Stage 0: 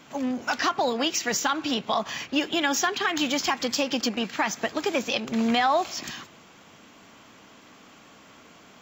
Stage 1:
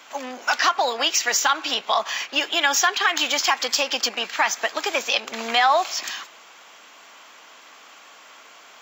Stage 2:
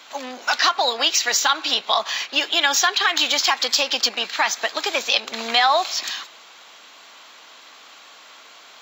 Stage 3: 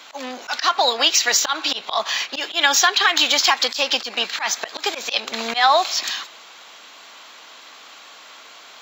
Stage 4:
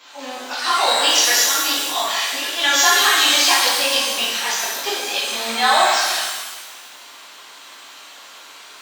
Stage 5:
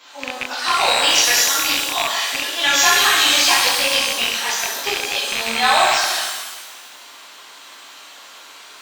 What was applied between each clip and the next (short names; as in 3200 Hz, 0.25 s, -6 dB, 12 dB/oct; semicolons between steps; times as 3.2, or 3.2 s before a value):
HPF 710 Hz 12 dB/oct; gain +6.5 dB
bell 4000 Hz +9 dB 0.43 oct
auto swell 0.101 s; gain +2.5 dB
shimmer reverb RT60 1.3 s, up +12 st, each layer -8 dB, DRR -9 dB; gain -8 dB
rattling part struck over -41 dBFS, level -9 dBFS